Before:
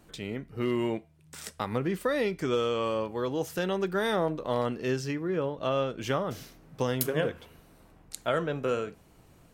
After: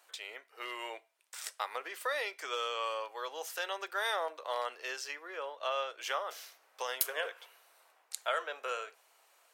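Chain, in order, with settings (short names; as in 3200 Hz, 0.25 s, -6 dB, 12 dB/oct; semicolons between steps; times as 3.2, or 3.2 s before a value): Bessel high-pass 900 Hz, order 6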